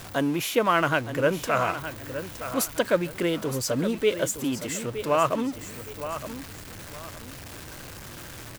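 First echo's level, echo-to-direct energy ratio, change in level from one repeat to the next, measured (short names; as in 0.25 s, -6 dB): -11.0 dB, -10.5 dB, -10.0 dB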